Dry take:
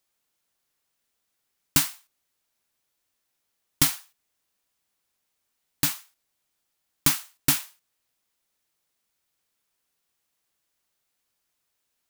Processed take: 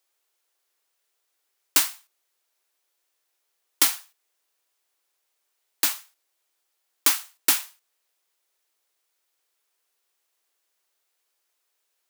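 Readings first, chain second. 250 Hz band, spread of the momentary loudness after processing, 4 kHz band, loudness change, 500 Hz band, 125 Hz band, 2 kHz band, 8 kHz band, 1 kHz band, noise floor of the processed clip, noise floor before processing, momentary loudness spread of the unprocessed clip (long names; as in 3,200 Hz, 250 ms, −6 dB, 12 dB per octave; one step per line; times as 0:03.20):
−8.5 dB, 6 LU, +2.0 dB, +2.0 dB, +1.5 dB, below −40 dB, +2.0 dB, +2.0 dB, +2.0 dB, −76 dBFS, −78 dBFS, 7 LU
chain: Butterworth high-pass 330 Hz 48 dB per octave
level +2 dB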